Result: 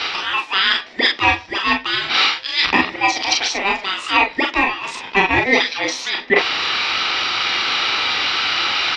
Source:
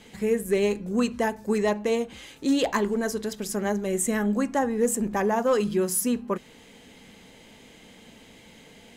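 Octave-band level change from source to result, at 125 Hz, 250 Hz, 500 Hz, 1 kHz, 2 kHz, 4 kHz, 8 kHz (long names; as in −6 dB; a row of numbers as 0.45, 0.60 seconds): 0.0, −2.0, −1.0, +12.5, +19.5, +24.0, +1.5 decibels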